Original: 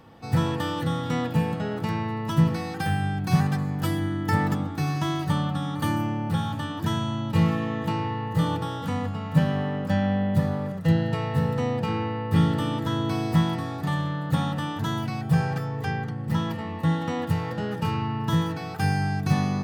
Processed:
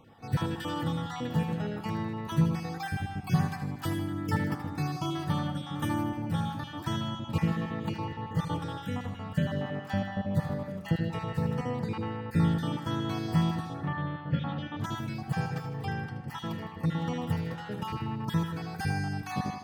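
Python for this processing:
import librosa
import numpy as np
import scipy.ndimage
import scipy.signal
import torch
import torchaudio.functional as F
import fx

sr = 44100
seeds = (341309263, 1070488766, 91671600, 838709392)

y = fx.spec_dropout(x, sr, seeds[0], share_pct=27)
y = fx.lowpass(y, sr, hz=fx.line((13.73, 2600.0), (14.8, 4400.0)), slope=24, at=(13.73, 14.8), fade=0.02)
y = fx.echo_feedback(y, sr, ms=78, feedback_pct=54, wet_db=-10)
y = F.gain(torch.from_numpy(y), -5.0).numpy()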